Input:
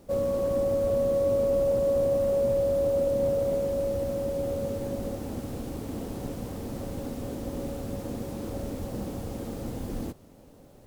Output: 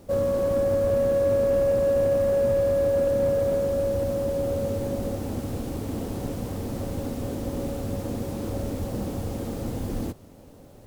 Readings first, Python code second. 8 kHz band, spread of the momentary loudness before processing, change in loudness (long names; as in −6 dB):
+3.0 dB, 12 LU, +3.0 dB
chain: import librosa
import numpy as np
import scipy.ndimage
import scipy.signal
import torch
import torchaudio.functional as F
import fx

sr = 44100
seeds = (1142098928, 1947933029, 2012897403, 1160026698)

p1 = np.clip(x, -10.0 ** (-27.5 / 20.0), 10.0 ** (-27.5 / 20.0))
p2 = x + (p1 * librosa.db_to_amplitude(-8.5))
p3 = fx.peak_eq(p2, sr, hz=94.0, db=5.5, octaves=0.28)
y = p3 * librosa.db_to_amplitude(1.0)